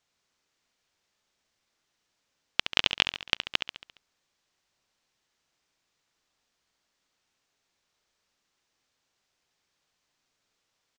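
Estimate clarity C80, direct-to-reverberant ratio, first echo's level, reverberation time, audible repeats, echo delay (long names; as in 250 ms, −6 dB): no reverb audible, no reverb audible, −8.5 dB, no reverb audible, 5, 69 ms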